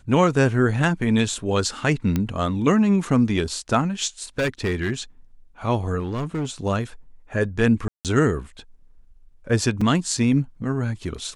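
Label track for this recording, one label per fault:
2.160000	2.160000	click −10 dBFS
4.380000	4.910000	clipping −18.5 dBFS
5.990000	6.500000	clipping −22 dBFS
7.880000	8.050000	drop-out 168 ms
9.810000	9.810000	drop-out 4.1 ms

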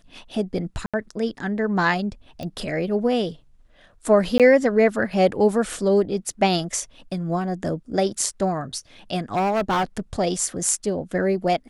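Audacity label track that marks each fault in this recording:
0.860000	0.940000	drop-out 76 ms
2.430000	2.430000	click −21 dBFS
4.380000	4.400000	drop-out 17 ms
9.350000	10.000000	clipping −18 dBFS

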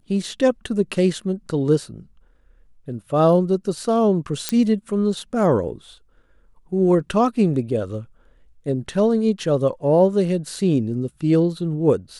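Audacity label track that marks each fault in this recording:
4.490000	4.490000	click −5 dBFS

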